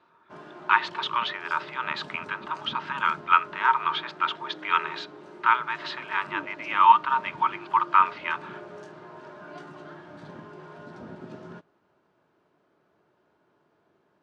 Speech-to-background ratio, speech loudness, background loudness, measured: 19.0 dB, -25.0 LUFS, -44.0 LUFS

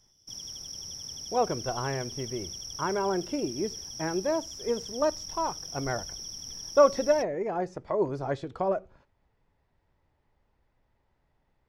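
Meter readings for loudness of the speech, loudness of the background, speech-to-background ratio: -30.0 LUFS, -38.0 LUFS, 8.0 dB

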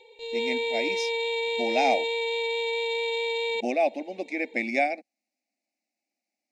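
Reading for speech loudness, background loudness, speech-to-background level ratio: -29.0 LUFS, -28.0 LUFS, -1.0 dB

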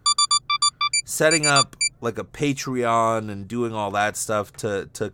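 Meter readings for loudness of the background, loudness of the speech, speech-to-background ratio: -20.0 LUFS, -23.5 LUFS, -3.5 dB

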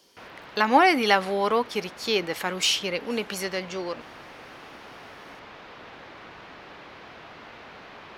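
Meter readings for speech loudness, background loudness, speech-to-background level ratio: -24.0 LUFS, -44.0 LUFS, 20.0 dB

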